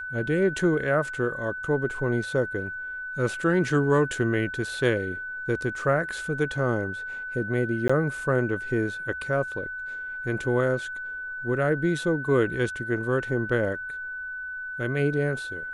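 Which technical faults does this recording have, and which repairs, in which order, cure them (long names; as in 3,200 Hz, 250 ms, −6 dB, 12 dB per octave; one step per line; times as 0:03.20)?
whistle 1,500 Hz −32 dBFS
0:07.88–0:07.89: drop-out 15 ms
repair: notch filter 1,500 Hz, Q 30
repair the gap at 0:07.88, 15 ms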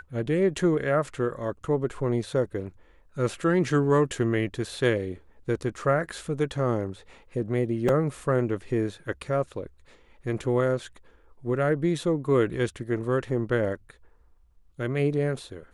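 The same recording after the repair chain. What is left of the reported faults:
none of them is left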